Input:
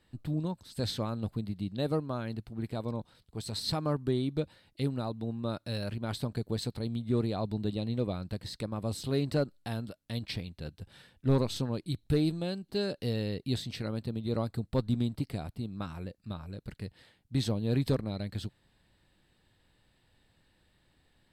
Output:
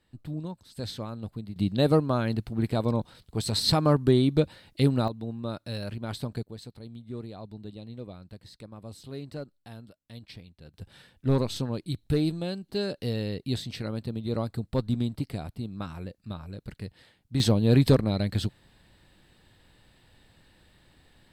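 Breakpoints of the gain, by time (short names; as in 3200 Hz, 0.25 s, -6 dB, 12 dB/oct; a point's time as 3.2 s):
-2.5 dB
from 1.56 s +9 dB
from 5.08 s +0.5 dB
from 6.43 s -9 dB
from 10.74 s +2 dB
from 17.4 s +9 dB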